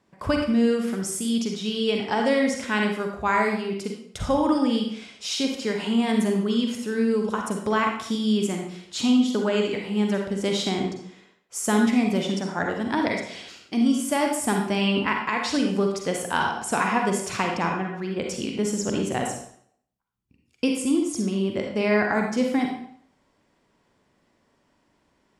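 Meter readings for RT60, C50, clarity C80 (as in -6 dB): 0.60 s, 3.0 dB, 7.0 dB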